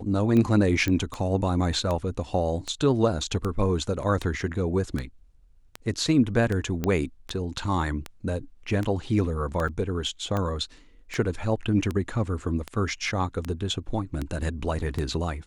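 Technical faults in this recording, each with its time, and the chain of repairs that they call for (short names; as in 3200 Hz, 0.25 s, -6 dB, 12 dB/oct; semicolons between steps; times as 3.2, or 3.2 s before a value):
tick 78 rpm -16 dBFS
0.88 pop -13 dBFS
6.84 pop -13 dBFS
9.68–9.69 gap 6.2 ms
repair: de-click; interpolate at 9.68, 6.2 ms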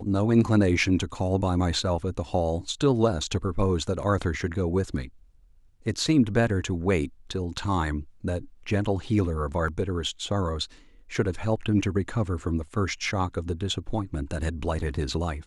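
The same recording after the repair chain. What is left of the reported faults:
none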